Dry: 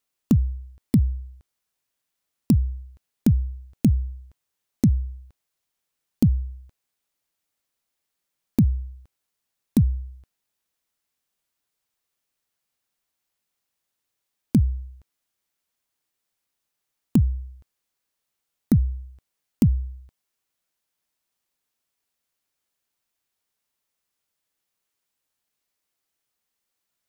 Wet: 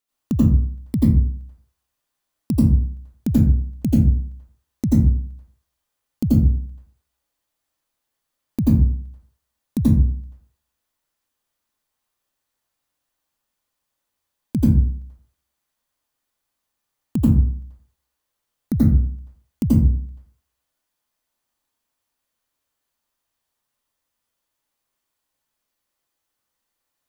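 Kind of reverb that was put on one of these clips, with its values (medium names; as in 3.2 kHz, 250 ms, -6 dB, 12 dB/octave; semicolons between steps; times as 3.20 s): plate-style reverb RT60 0.55 s, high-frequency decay 0.45×, pre-delay 75 ms, DRR -7.5 dB; trim -4.5 dB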